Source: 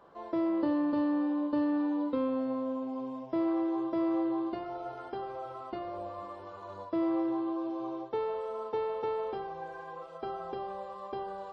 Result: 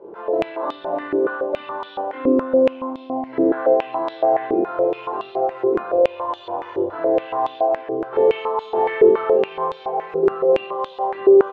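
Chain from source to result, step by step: dynamic bell 1.4 kHz, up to -5 dB, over -53 dBFS, Q 1.7; in parallel at +1.5 dB: compression, threshold -40 dBFS, peak gain reduction 13 dB; on the sum: formant shift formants -3 st; sine folder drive 3 dB, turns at -18 dBFS; harmony voices +5 st -16 dB; doubling 23 ms -6 dB; on a send: delay 742 ms -13 dB; on the sum: simulated room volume 1900 m³, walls furnished, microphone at 4.9 m; step-sequenced band-pass 7.1 Hz 390–3600 Hz; trim +8 dB

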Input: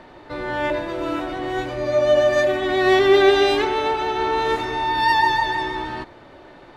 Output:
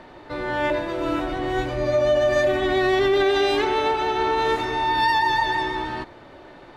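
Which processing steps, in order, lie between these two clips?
1.04–3.24 s: bass shelf 110 Hz +8.5 dB; peak limiter -12.5 dBFS, peak gain reduction 8 dB

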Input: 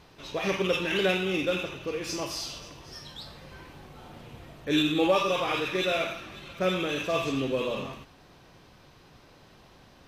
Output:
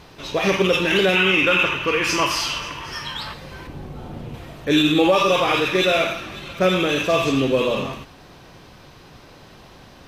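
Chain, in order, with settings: 1.15–3.34 s: time-frequency box 840–3300 Hz +10 dB; 3.67–4.34 s: tilt shelf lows +6 dB, about 640 Hz; loudness maximiser +16.5 dB; trim -7 dB

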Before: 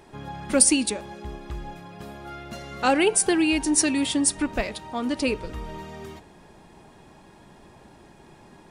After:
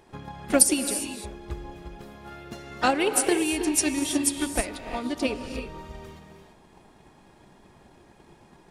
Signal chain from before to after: gated-style reverb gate 370 ms rising, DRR 5.5 dB; transient shaper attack +8 dB, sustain +1 dB; harmony voices +4 st -12 dB; trim -6 dB

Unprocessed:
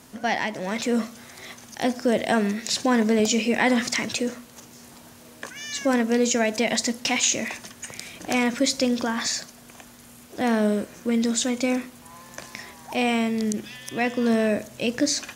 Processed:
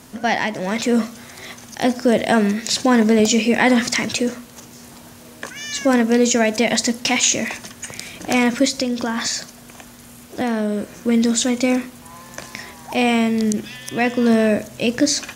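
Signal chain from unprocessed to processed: bass shelf 200 Hz +3 dB; 8.65–10.92 s: compression, threshold -23 dBFS, peak gain reduction 6.5 dB; trim +5 dB

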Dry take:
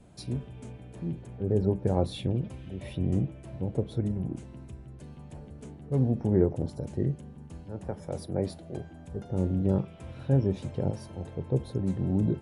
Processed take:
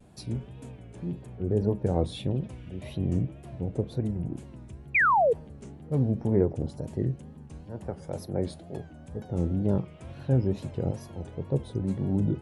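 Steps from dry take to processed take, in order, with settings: painted sound fall, 4.95–5.33 s, 400–2500 Hz -21 dBFS; wow and flutter 120 cents

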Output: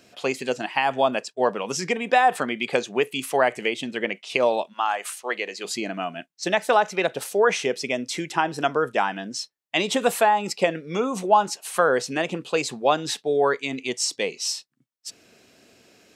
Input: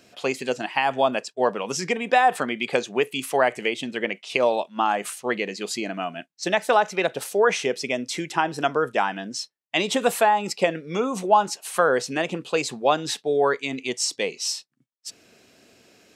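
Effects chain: 4.72–5.64 s: high-pass 860 Hz -> 390 Hz 12 dB/octave

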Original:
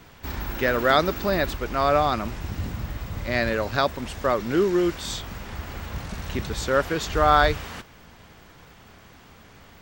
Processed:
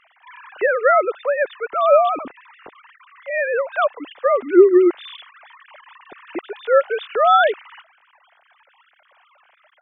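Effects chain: formants replaced by sine waves; 1.69–2.23 s: bass shelf 290 Hz +8 dB; trim +5 dB

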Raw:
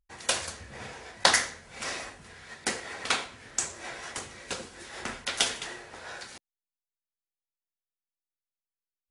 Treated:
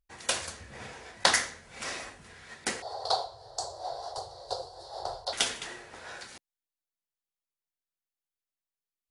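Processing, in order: 2.82–5.33 s: FFT filter 130 Hz 0 dB, 230 Hz -29 dB, 400 Hz 0 dB, 730 Hz +14 dB, 2.4 kHz -30 dB, 4.4 kHz +9 dB, 6.3 kHz -9 dB; trim -2 dB

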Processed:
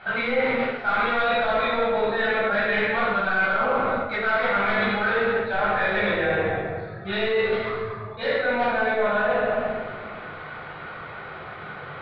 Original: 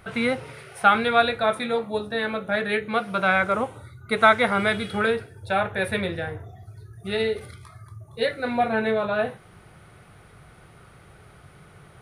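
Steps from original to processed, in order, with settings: in parallel at -8 dB: integer overflow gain 13.5 dB; on the sum: bass shelf 330 Hz -9 dB; overdrive pedal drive 18 dB, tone 1.3 kHz, clips at -7.5 dBFS; Chebyshev low-pass 4.1 kHz, order 4; reverberation RT60 1.5 s, pre-delay 10 ms, DRR -9.5 dB; reverse; compression, threshold -14 dBFS, peak gain reduction 13.5 dB; reverse; trim -6 dB

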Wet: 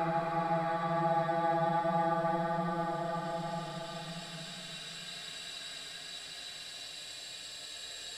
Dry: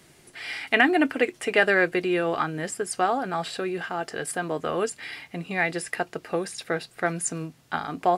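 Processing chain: Chebyshev shaper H 8 -20 dB, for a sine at -4.5 dBFS; harmonic-percussive split percussive -10 dB; Paulstretch 43×, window 0.10 s, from 3.35 s; trim -4.5 dB

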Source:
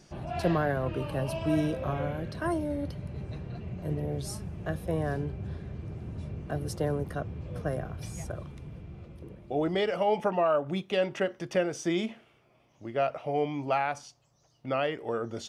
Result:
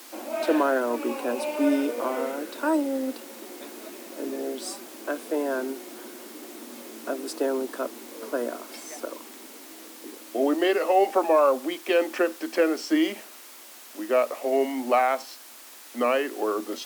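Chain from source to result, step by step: added noise white -51 dBFS; speed mistake 48 kHz file played as 44.1 kHz; rippled Chebyshev high-pass 230 Hz, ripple 3 dB; trim +7.5 dB

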